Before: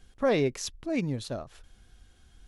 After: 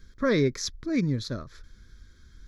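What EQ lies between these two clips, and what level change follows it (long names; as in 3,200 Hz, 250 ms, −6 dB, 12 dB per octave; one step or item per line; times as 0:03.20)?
phaser with its sweep stopped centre 2,800 Hz, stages 6
+5.5 dB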